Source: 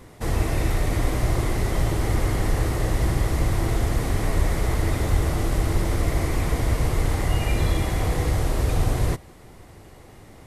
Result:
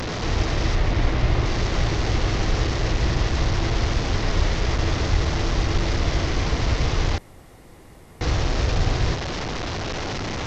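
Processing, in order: one-bit delta coder 32 kbps, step -21.5 dBFS; 0.75–1.46 s: tone controls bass +2 dB, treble -7 dB; 7.18–8.21 s: room tone

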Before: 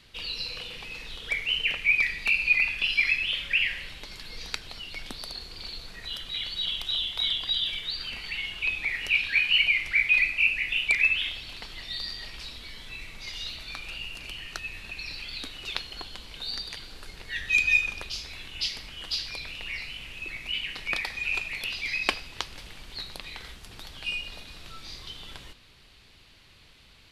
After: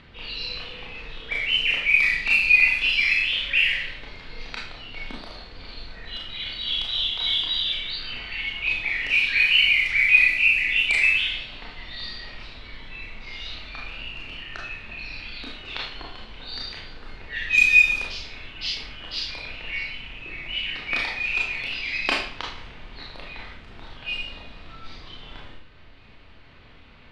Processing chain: Schroeder reverb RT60 0.53 s, combs from 25 ms, DRR -3 dB; upward compressor, threshold -39 dBFS; level-controlled noise filter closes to 1.8 kHz, open at -15 dBFS

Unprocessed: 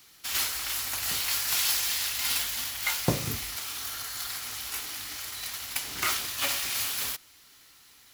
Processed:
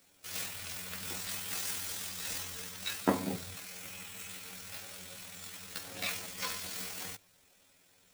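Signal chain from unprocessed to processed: rotating-head pitch shifter +10.5 st; treble shelf 2.7 kHz -10.5 dB; hum notches 50/100 Hz

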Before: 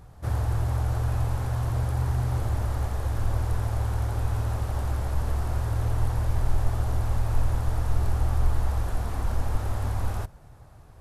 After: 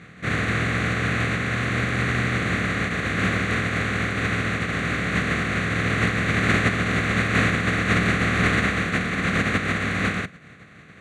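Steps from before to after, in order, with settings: spectral contrast reduction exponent 0.52; cabinet simulation 150–5500 Hz, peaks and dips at 180 Hz +8 dB, 360 Hz -5 dB, 590 Hz -5 dB, 1.1 kHz +4 dB, 2 kHz +5 dB, 3.1 kHz -8 dB; static phaser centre 2.2 kHz, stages 4; trim +8 dB

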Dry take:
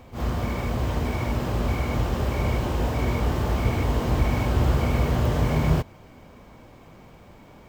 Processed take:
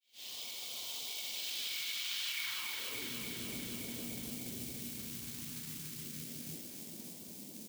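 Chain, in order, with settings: fade-in on the opening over 0.84 s; reverb removal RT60 1 s; reverse bouncing-ball echo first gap 60 ms, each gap 1.5×, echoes 5; band-pass sweep 3.4 kHz -> 220 Hz, 2.26–3.17 s; short-mantissa float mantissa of 2-bit; RIAA curve recording; compression, threshold -45 dBFS, peak gain reduction 15.5 dB; peak limiter -39 dBFS, peak gain reduction 10 dB; phase shifter stages 2, 0.32 Hz, lowest notch 570–1700 Hz; thinning echo 288 ms, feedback 79%, high-pass 520 Hz, level -3.5 dB; trim +9.5 dB

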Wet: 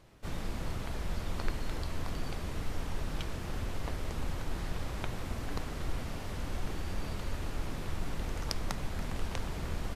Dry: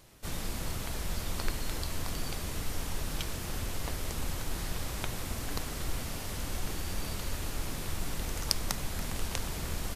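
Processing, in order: low-pass 2.1 kHz 6 dB/octave

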